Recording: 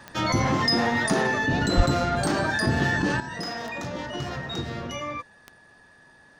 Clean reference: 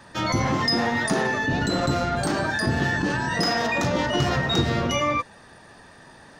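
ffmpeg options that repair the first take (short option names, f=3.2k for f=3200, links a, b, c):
-filter_complex "[0:a]adeclick=t=4,bandreject=f=1.7k:w=30,asplit=3[a][b][c];[a]afade=t=out:st=1.76:d=0.02[d];[b]highpass=f=140:w=0.5412,highpass=f=140:w=1.3066,afade=t=in:st=1.76:d=0.02,afade=t=out:st=1.88:d=0.02[e];[c]afade=t=in:st=1.88:d=0.02[f];[d][e][f]amix=inputs=3:normalize=0,asetnsamples=n=441:p=0,asendcmd='3.2 volume volume 9.5dB',volume=0dB"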